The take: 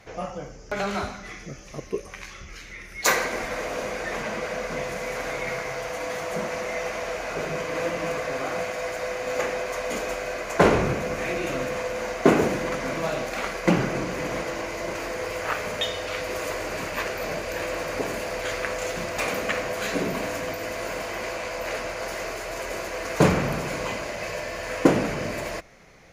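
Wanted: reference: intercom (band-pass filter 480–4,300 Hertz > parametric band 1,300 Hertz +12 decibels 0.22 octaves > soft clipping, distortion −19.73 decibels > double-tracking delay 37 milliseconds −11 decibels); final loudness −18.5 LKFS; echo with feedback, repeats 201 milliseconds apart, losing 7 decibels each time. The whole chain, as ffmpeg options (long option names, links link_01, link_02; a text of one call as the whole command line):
ffmpeg -i in.wav -filter_complex "[0:a]highpass=480,lowpass=4300,equalizer=frequency=1300:width_type=o:width=0.22:gain=12,aecho=1:1:201|402|603|804|1005:0.447|0.201|0.0905|0.0407|0.0183,asoftclip=threshold=-12.5dB,asplit=2[link_01][link_02];[link_02]adelay=37,volume=-11dB[link_03];[link_01][link_03]amix=inputs=2:normalize=0,volume=9dB" out.wav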